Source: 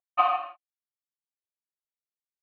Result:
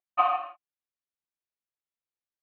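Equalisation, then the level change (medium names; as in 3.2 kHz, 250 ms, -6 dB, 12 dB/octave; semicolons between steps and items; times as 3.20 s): distance through air 170 m; 0.0 dB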